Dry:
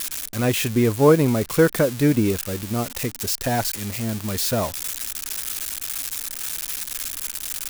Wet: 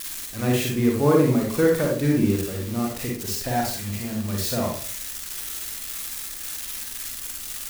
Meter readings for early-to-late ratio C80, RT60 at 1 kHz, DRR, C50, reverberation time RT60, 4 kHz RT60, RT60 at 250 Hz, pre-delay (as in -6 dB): 9.0 dB, 0.40 s, -1.5 dB, 2.0 dB, 0.45 s, 0.35 s, 0.55 s, 39 ms